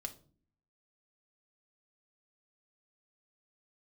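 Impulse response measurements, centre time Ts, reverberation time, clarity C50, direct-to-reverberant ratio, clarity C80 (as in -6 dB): 6 ms, 0.45 s, 15.5 dB, 4.5 dB, 20.5 dB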